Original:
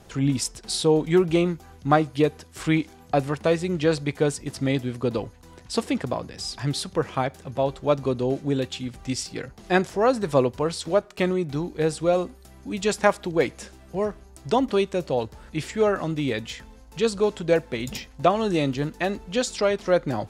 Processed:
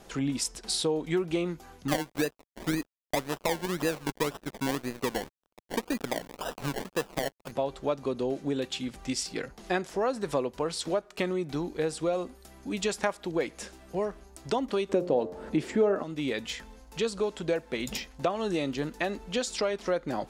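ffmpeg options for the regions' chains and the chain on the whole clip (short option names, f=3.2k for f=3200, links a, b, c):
-filter_complex "[0:a]asettb=1/sr,asplit=3[a][b][c];[a]atrim=end=1.884[d];[b]atrim=start=1.88:end=7.52,asetpts=PTS-STARTPTS,afade=t=in:d=0.004:c=qsin,afade=t=out:st=5.636:d=0.004:c=qsin,acrusher=samples=28:mix=1:aa=0.000001:lfo=1:lforange=16.8:lforate=1.9,aeval=exprs='sgn(val(0))*max(abs(val(0))-0.00944,0)':c=same[e];[c]atrim=start=7.516[f];[d][e]acrossfade=d=0.004:c1=hsin:c2=qsin[g];[g][f]acrossfade=d=0.004:c1=qsin:c2=hsin,asettb=1/sr,asplit=3[h][i][j];[h]atrim=end=14.894[k];[i]atrim=start=14.89:end=16.03,asetpts=PTS-STARTPTS,afade=t=in:d=0.004:c=qsin,afade=t=out:st=1.136:d=0.004:c=qsin,highpass=49,equalizer=f=320:w=0.3:g=15,bandreject=f=89.04:t=h:w=4,bandreject=f=178.08:t=h:w=4,bandreject=f=267.12:t=h:w=4,bandreject=f=356.16:t=h:w=4,bandreject=f=445.2:t=h:w=4,bandreject=f=534.24:t=h:w=4,bandreject=f=623.28:t=h:w=4,bandreject=f=712.32:t=h:w=4,bandreject=f=801.36:t=h:w=4,bandreject=f=890.4:t=h:w=4,bandreject=f=979.44:t=h:w=4,bandreject=f=1.06848k:t=h:w=4,bandreject=f=1.15752k:t=h:w=4,bandreject=f=1.24656k:t=h:w=4,bandreject=f=1.3356k:t=h:w=4[l];[j]atrim=start=16.026[m];[k][l]acrossfade=d=0.004:c1=hsin:c2=qsin[n];[n][m]acrossfade=d=0.004:c1=qsin:c2=hsin,equalizer=f=100:t=o:w=1:g=-14,acompressor=threshold=-27dB:ratio=3"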